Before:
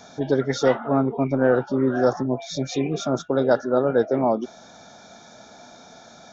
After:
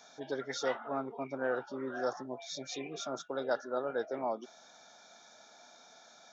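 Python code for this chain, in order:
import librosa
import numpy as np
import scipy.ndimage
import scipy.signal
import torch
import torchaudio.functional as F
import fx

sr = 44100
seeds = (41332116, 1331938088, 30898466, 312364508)

y = fx.highpass(x, sr, hz=970.0, slope=6)
y = y * librosa.db_to_amplitude(-8.0)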